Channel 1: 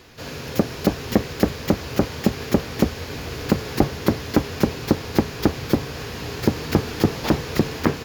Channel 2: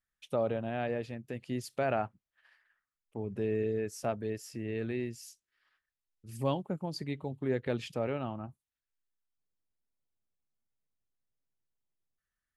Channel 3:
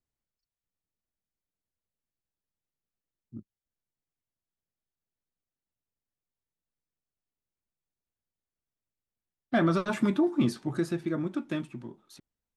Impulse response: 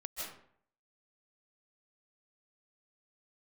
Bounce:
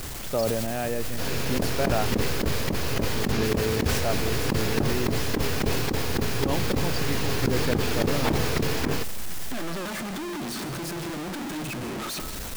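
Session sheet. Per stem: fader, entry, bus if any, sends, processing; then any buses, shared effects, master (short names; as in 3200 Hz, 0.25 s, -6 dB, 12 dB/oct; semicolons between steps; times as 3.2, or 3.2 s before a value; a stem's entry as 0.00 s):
+0.5 dB, 1.00 s, no send, slew limiter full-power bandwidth 99 Hz
+2.5 dB, 0.00 s, no send, dry
-1.0 dB, 0.00 s, send -7 dB, infinite clipping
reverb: on, RT60 0.60 s, pre-delay 0.115 s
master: negative-ratio compressor -23 dBFS, ratio -0.5; sustainer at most 20 dB/s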